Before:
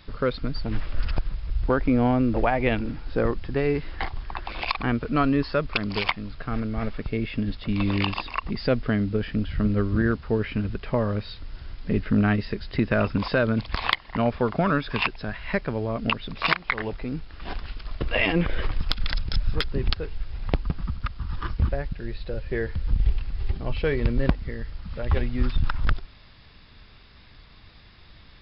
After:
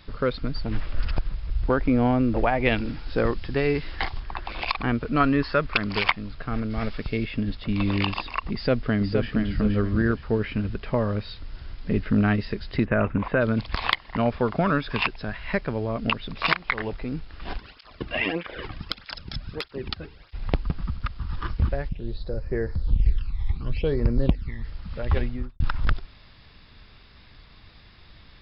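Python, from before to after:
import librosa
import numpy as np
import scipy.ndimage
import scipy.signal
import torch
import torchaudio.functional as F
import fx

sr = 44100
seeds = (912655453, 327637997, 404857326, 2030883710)

y = fx.high_shelf(x, sr, hz=2500.0, db=8.5, at=(2.65, 4.2))
y = fx.peak_eq(y, sr, hz=1600.0, db=5.5, octaves=1.3, at=(5.2, 6.12))
y = fx.high_shelf(y, sr, hz=3300.0, db=11.0, at=(6.7, 7.25))
y = fx.echo_throw(y, sr, start_s=8.54, length_s=0.75, ms=470, feedback_pct=30, wet_db=-5.5)
y = fx.lowpass(y, sr, hz=2400.0, slope=24, at=(12.84, 13.4), fade=0.02)
y = fx.flanger_cancel(y, sr, hz=1.6, depth_ms=2.4, at=(17.57, 20.33), fade=0.02)
y = fx.phaser_stages(y, sr, stages=12, low_hz=470.0, high_hz=3300.0, hz=fx.line((21.88, 0.32), (24.63, 1.2)), feedback_pct=25, at=(21.88, 24.63), fade=0.02)
y = fx.studio_fade_out(y, sr, start_s=25.19, length_s=0.41)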